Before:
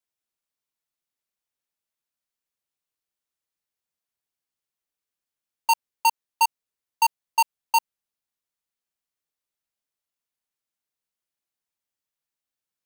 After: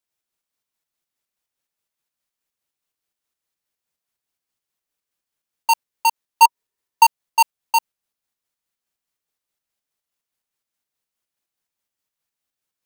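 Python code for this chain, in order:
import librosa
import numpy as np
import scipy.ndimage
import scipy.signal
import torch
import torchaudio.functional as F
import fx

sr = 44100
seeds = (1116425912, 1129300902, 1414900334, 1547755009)

p1 = fx.small_body(x, sr, hz=(400.0, 960.0, 1800.0), ring_ms=35, db=7, at=(6.42, 7.04))
p2 = fx.volume_shaper(p1, sr, bpm=144, per_beat=2, depth_db=-12, release_ms=113.0, shape='slow start')
y = p1 + (p2 * librosa.db_to_amplitude(1.0))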